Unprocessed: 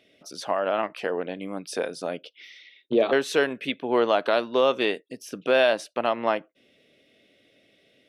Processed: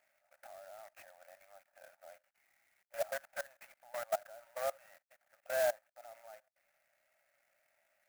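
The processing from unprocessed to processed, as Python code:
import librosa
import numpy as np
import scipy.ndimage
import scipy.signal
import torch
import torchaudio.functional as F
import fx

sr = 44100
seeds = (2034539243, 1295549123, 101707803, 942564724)

y = fx.cvsd(x, sr, bps=16000)
y = fx.level_steps(y, sr, step_db=22)
y = fx.brickwall_highpass(y, sr, low_hz=520.0)
y = fx.fixed_phaser(y, sr, hz=700.0, stages=8)
y = fx.clock_jitter(y, sr, seeds[0], jitter_ms=0.05)
y = y * 10.0 ** (-6.0 / 20.0)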